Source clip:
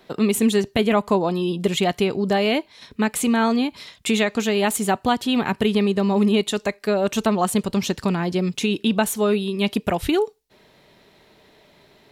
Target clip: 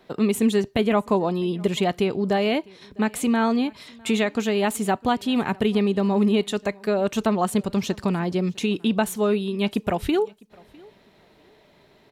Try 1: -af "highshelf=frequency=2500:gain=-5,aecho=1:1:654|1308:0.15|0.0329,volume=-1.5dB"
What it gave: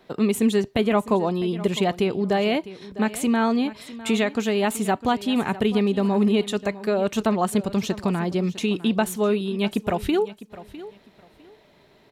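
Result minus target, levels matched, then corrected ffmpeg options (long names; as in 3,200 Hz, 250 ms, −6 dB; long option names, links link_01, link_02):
echo-to-direct +9.5 dB
-af "highshelf=frequency=2500:gain=-5,aecho=1:1:654|1308:0.0501|0.011,volume=-1.5dB"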